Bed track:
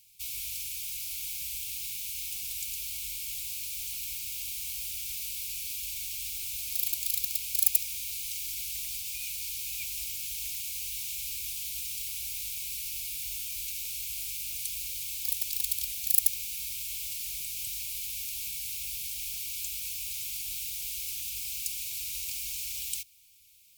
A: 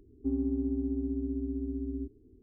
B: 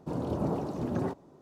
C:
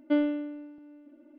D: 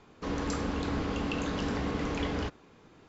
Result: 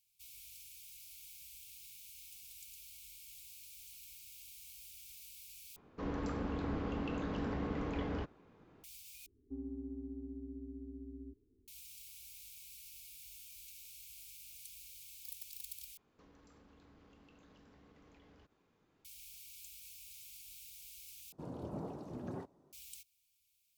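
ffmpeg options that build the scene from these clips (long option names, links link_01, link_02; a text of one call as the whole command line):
ffmpeg -i bed.wav -i cue0.wav -i cue1.wav -i cue2.wav -i cue3.wav -filter_complex "[4:a]asplit=2[link_01][link_02];[0:a]volume=-17.5dB[link_03];[link_01]lowpass=frequency=1500:poles=1[link_04];[link_02]acompressor=threshold=-43dB:ratio=6:attack=3.2:release=140:knee=1:detection=peak[link_05];[link_03]asplit=5[link_06][link_07][link_08][link_09][link_10];[link_06]atrim=end=5.764[link_11];[link_04]atrim=end=3.08,asetpts=PTS-STARTPTS,volume=-5.5dB[link_12];[link_07]atrim=start=8.836:end=9.264[link_13];[1:a]atrim=end=2.42,asetpts=PTS-STARTPTS,volume=-13.5dB[link_14];[link_08]atrim=start=11.676:end=15.974[link_15];[link_05]atrim=end=3.08,asetpts=PTS-STARTPTS,volume=-17.5dB[link_16];[link_09]atrim=start=19.046:end=21.324[link_17];[2:a]atrim=end=1.41,asetpts=PTS-STARTPTS,volume=-12.5dB[link_18];[link_10]atrim=start=22.726[link_19];[link_11][link_12]acrossfade=duration=0.004:curve1=hsin:curve2=hsin[link_20];[link_20][link_13]acrossfade=duration=0.004:curve1=hsin:curve2=hsin[link_21];[link_21][link_14]acrossfade=duration=0.004:curve1=hsin:curve2=hsin[link_22];[link_22][link_15]acrossfade=duration=0.004:curve1=hsin:curve2=hsin[link_23];[link_23][link_16]acrossfade=duration=0.004:curve1=hsin:curve2=hsin[link_24];[link_24][link_17]acrossfade=duration=0.004:curve1=hsin:curve2=hsin[link_25];[link_25][link_18]acrossfade=duration=0.004:curve1=hsin:curve2=hsin[link_26];[link_26][link_19]acrossfade=duration=0.004:curve1=hsin:curve2=hsin" out.wav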